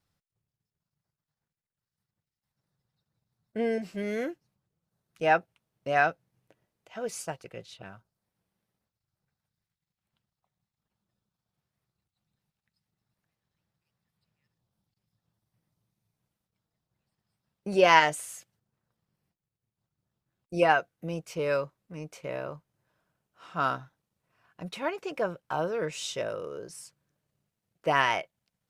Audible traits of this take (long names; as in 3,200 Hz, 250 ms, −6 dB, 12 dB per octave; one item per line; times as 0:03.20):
background noise floor −91 dBFS
spectral slope −4.0 dB per octave